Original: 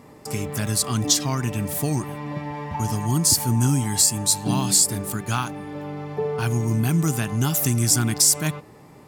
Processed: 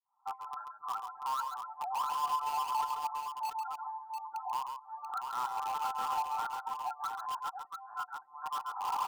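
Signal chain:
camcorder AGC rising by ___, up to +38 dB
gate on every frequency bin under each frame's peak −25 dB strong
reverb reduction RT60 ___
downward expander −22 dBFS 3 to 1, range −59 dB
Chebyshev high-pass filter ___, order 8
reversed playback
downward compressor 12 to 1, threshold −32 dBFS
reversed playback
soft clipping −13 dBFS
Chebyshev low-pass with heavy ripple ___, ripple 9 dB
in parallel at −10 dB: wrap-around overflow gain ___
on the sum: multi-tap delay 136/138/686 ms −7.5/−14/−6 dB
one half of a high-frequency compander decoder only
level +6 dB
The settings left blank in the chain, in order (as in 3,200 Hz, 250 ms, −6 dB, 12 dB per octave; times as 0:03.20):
68 dB per second, 1.4 s, 740 Hz, 1,400 Hz, 38 dB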